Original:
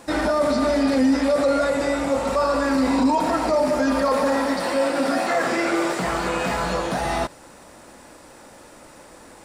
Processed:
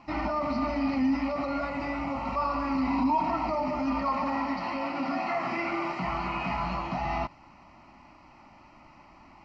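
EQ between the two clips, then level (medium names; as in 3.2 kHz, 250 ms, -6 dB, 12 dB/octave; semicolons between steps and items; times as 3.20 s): low-pass 3.9 kHz 24 dB/octave; static phaser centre 2.4 kHz, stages 8; -3.5 dB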